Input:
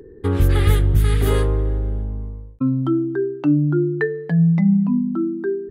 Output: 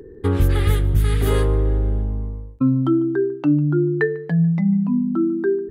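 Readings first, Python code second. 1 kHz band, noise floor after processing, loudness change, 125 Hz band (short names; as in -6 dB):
0.0 dB, -40 dBFS, -0.5 dB, -1.0 dB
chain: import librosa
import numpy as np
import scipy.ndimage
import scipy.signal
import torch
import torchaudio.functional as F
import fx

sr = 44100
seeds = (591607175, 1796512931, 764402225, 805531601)

y = fx.rider(x, sr, range_db=3, speed_s=0.5)
y = y + 10.0 ** (-22.5 / 20.0) * np.pad(y, (int(148 * sr / 1000.0), 0))[:len(y)]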